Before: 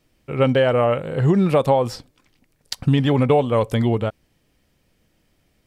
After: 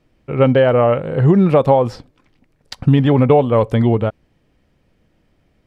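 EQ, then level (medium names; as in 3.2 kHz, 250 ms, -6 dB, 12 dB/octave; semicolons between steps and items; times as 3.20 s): low-pass 1.7 kHz 6 dB/octave; +5.0 dB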